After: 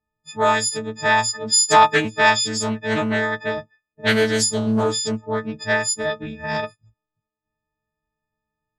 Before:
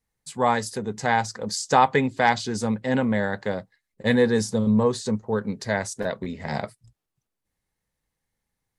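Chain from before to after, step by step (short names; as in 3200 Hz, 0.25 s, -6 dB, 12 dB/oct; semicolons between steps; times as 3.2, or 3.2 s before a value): frequency quantiser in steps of 6 st; low-pass opened by the level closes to 1300 Hz, open at -14 dBFS; Doppler distortion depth 0.32 ms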